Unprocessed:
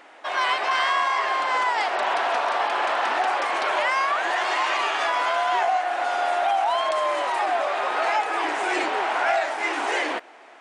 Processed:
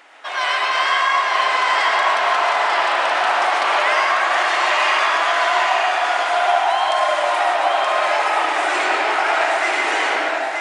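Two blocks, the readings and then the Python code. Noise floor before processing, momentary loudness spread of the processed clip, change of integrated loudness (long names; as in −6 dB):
−48 dBFS, 2 LU, +6.0 dB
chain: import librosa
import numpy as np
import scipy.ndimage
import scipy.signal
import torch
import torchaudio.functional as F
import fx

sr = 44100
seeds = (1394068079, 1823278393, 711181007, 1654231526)

y = fx.tilt_shelf(x, sr, db=-5.0, hz=810.0)
y = y + 10.0 ** (-3.5 / 20.0) * np.pad(y, (int(925 * sr / 1000.0), 0))[:len(y)]
y = fx.rev_freeverb(y, sr, rt60_s=1.6, hf_ratio=0.35, predelay_ms=70, drr_db=-1.5)
y = y * 10.0 ** (-1.0 / 20.0)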